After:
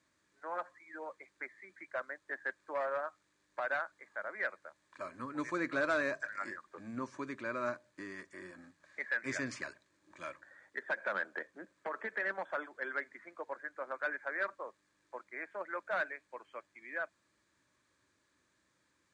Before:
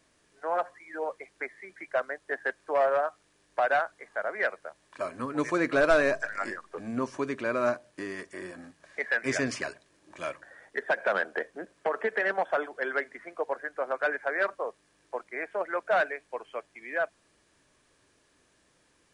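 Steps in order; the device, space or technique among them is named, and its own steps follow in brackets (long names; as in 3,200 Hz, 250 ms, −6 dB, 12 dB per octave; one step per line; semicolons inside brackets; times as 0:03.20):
car door speaker (loudspeaker in its box 83–7,800 Hz, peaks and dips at 150 Hz −5 dB, 240 Hz −3 dB, 440 Hz −10 dB, 720 Hz −10 dB, 2,900 Hz −8 dB, 5,400 Hz −6 dB)
level −6 dB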